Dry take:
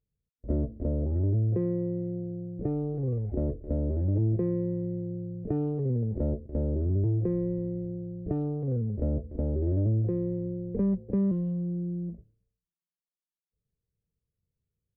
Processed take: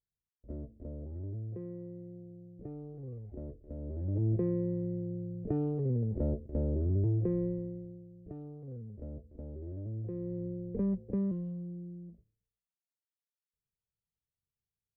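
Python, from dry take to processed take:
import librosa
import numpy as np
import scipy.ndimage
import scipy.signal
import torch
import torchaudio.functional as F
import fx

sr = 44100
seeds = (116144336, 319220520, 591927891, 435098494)

y = fx.gain(x, sr, db=fx.line((3.74, -14.0), (4.31, -3.0), (7.45, -3.0), (8.09, -15.0), (9.83, -15.0), (10.42, -5.0), (11.09, -5.0), (12.09, -13.5)))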